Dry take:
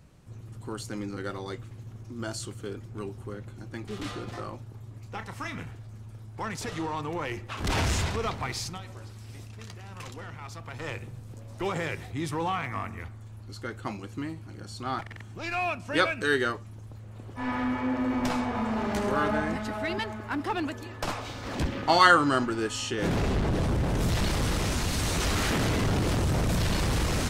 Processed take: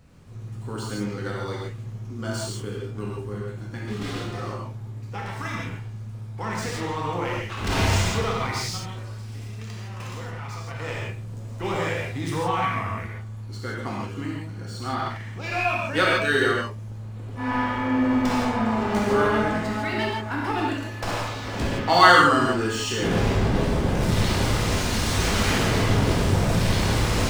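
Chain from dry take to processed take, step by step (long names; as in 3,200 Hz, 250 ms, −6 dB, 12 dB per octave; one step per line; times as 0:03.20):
running median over 3 samples
reverb whose tail is shaped and stops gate 190 ms flat, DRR −4 dB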